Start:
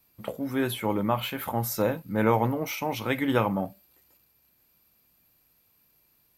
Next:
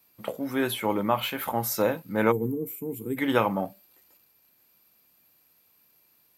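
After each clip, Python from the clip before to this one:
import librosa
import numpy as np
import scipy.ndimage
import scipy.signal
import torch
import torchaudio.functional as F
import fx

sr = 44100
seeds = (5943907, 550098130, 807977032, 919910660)

y = fx.highpass(x, sr, hz=250.0, slope=6)
y = fx.spec_box(y, sr, start_s=2.32, length_s=0.85, low_hz=490.0, high_hz=6900.0, gain_db=-27)
y = y * 10.0 ** (2.5 / 20.0)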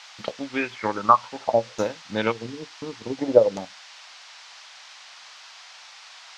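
y = fx.transient(x, sr, attack_db=9, sustain_db=-9)
y = fx.filter_lfo_lowpass(y, sr, shape='saw_down', hz=0.56, low_hz=430.0, high_hz=6400.0, q=7.8)
y = fx.dmg_noise_band(y, sr, seeds[0], low_hz=720.0, high_hz=5700.0, level_db=-40.0)
y = y * 10.0 ** (-6.0 / 20.0)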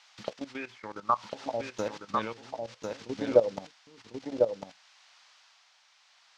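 y = fx.level_steps(x, sr, step_db=15)
y = y * (1.0 - 0.68 / 2.0 + 0.68 / 2.0 * np.cos(2.0 * np.pi * 0.58 * (np.arange(len(y)) / sr)))
y = y + 10.0 ** (-4.0 / 20.0) * np.pad(y, (int(1049 * sr / 1000.0), 0))[:len(y)]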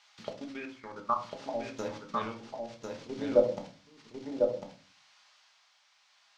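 y = fx.room_shoebox(x, sr, seeds[1], volume_m3=240.0, walls='furnished', distance_m=1.3)
y = y * 10.0 ** (-5.0 / 20.0)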